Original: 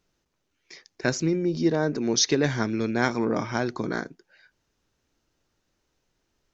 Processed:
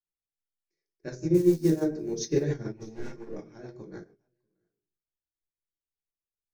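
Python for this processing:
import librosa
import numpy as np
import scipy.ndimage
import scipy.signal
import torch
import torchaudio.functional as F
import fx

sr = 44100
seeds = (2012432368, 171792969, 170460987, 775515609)

y = fx.crossing_spikes(x, sr, level_db=-19.5, at=(1.34, 1.8))
y = fx.low_shelf(y, sr, hz=420.0, db=10.0)
y = fx.comb_fb(y, sr, f0_hz=51.0, decay_s=0.36, harmonics='all', damping=0.0, mix_pct=50)
y = y + 10.0 ** (-16.5 / 20.0) * np.pad(y, (int(640 * sr / 1000.0), 0))[:len(y)]
y = fx.clip_hard(y, sr, threshold_db=-22.5, at=(2.76, 3.35))
y = fx.graphic_eq_31(y, sr, hz=(250, 400, 1250, 3150, 6300), db=(-11, 8, -5, -6, 6))
y = fx.room_shoebox(y, sr, seeds[0], volume_m3=480.0, walls='furnished', distance_m=2.3)
y = fx.rotary(y, sr, hz=7.0)
y = fx.upward_expand(y, sr, threshold_db=-36.0, expansion=2.5)
y = y * librosa.db_to_amplitude(-3.0)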